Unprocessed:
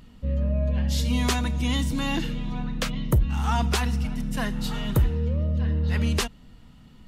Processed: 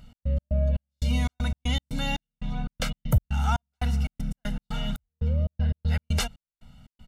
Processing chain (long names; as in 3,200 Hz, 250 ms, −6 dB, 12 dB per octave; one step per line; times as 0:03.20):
comb filter 1.4 ms, depth 88%
gate pattern "x.x.xx..xx." 118 BPM −60 dB
level −4 dB